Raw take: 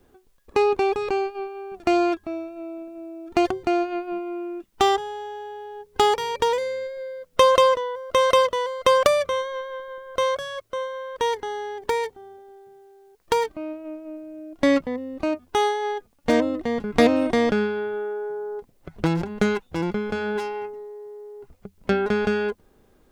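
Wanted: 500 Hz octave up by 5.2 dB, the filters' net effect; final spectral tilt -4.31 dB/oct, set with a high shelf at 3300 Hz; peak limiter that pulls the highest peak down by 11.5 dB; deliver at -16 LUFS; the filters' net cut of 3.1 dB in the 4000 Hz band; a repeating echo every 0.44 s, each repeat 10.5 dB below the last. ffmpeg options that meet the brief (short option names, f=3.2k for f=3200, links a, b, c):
-af "equalizer=f=500:t=o:g=6,highshelf=f=3.3k:g=4,equalizer=f=4k:t=o:g=-7,alimiter=limit=-10dB:level=0:latency=1,aecho=1:1:440|880|1320:0.299|0.0896|0.0269,volume=6dB"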